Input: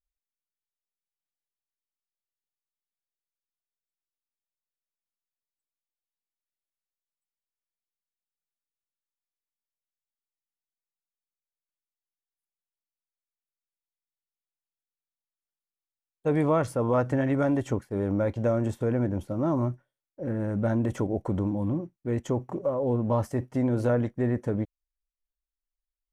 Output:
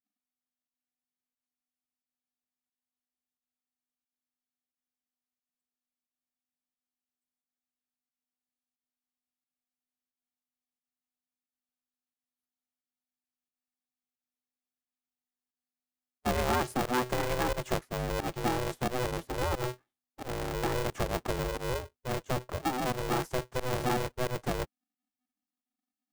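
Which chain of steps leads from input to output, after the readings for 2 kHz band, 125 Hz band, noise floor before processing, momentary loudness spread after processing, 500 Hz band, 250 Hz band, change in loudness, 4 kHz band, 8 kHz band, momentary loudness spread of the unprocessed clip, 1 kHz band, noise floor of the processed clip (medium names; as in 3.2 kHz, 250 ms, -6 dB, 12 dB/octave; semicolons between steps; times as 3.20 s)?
+4.5 dB, -8.0 dB, under -85 dBFS, 7 LU, -5.5 dB, -9.5 dB, -5.0 dB, no reading, +9.5 dB, 7 LU, +2.5 dB, under -85 dBFS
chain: volume shaper 89 bpm, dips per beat 1, -19 dB, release 110 ms; harmonic-percussive split percussive +4 dB; polarity switched at an audio rate 250 Hz; trim -6 dB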